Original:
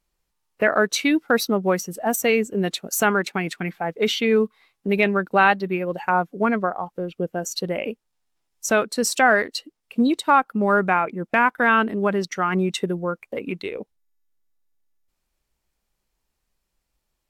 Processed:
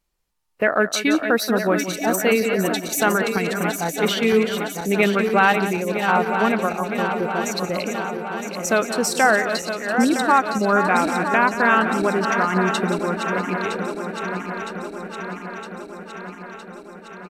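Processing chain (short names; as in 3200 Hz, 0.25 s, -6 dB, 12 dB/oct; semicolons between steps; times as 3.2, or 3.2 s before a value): regenerating reverse delay 0.481 s, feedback 80%, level -7.5 dB; echo 0.178 s -12.5 dB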